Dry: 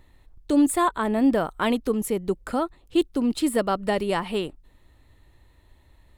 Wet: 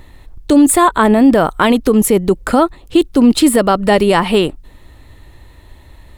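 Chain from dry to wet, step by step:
boost into a limiter +16.5 dB
level −1 dB

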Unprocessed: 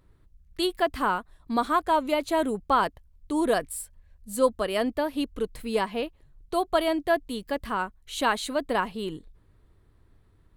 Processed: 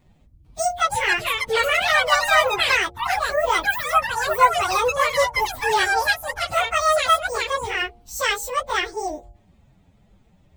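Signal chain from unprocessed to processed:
phase-vocoder pitch shift without resampling +11.5 semitones
hum removal 117.8 Hz, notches 7
delay with pitch and tempo change per echo 447 ms, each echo +4 semitones, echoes 3
level +8 dB

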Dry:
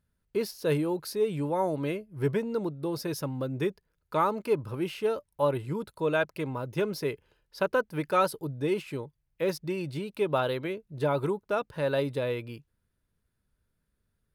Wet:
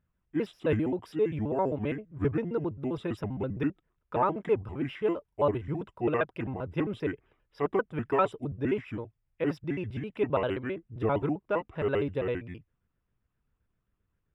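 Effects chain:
pitch shifter gated in a rhythm −5 semitones, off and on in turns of 66 ms
Savitzky-Golay smoothing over 25 samples

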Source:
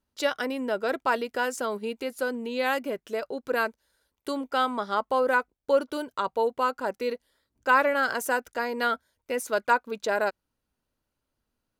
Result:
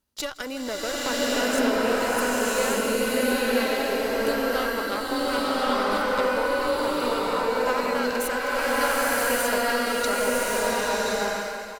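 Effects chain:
high-shelf EQ 3,300 Hz +8 dB
harmonic generator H 6 −17 dB, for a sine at −7 dBFS
on a send: single-tap delay 161 ms −19.5 dB
on the sum: downward compressor, threshold −28 dBFS, peak gain reduction 13.5 dB
slow-attack reverb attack 1,120 ms, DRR −9 dB

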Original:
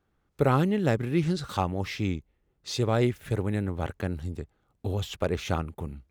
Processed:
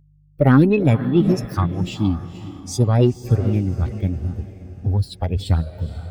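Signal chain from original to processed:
spectral dynamics exaggerated over time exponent 2
bass and treble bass +12 dB, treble −1 dB
hum with harmonics 50 Hz, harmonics 3, −60 dBFS
on a send: feedback delay with all-pass diffusion 485 ms, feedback 41%, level −14.5 dB
on the sum: formants moved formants +5 semitones
in parallel at −8.5 dB: soft clipping −20.5 dBFS, distortion −9 dB
on the sum: level +3.5 dB

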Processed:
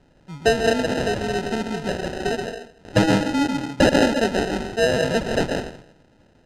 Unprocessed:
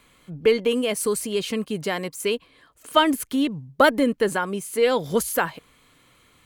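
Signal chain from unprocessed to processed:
convolution reverb RT60 0.65 s, pre-delay 110 ms, DRR 1.5 dB
decimation without filtering 39×
low-pass filter 6,500 Hz 12 dB per octave

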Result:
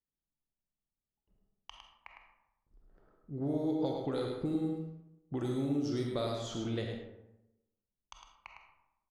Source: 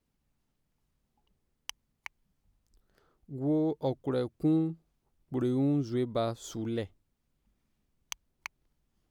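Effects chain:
noise gate with hold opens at −58 dBFS
high-shelf EQ 2,800 Hz +10 dB
low-pass that shuts in the quiet parts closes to 910 Hz, open at −24.5 dBFS
downward compressor, threshold −33 dBFS, peak gain reduction 10 dB
single-tap delay 106 ms −6 dB
on a send at −2 dB: convolution reverb RT60 0.90 s, pre-delay 5 ms

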